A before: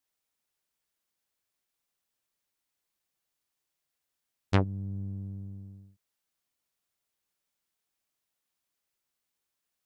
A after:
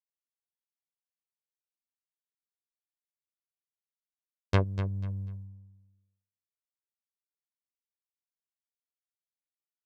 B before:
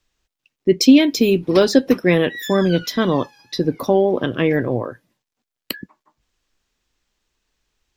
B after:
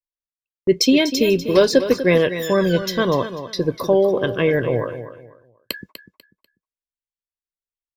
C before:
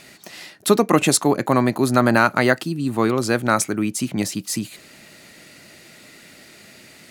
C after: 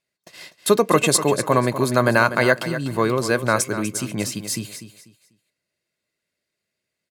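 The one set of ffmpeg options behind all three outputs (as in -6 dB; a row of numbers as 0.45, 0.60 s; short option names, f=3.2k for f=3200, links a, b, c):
-filter_complex "[0:a]agate=range=-35dB:threshold=-38dB:ratio=16:detection=peak,aecho=1:1:1.9:0.43,asplit=2[a][b];[b]aecho=0:1:246|492|738:0.266|0.0718|0.0194[c];[a][c]amix=inputs=2:normalize=0,volume=-1dB"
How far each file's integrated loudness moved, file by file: +1.0, -1.0, -0.5 LU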